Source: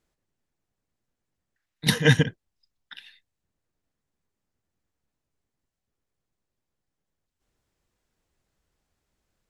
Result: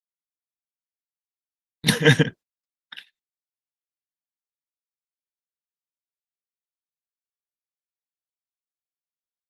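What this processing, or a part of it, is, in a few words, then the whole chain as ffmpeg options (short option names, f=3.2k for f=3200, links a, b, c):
video call: -af "highpass=150,dynaudnorm=f=110:g=13:m=8.5dB,agate=range=-42dB:threshold=-38dB:ratio=16:detection=peak" -ar 48000 -c:a libopus -b:a 20k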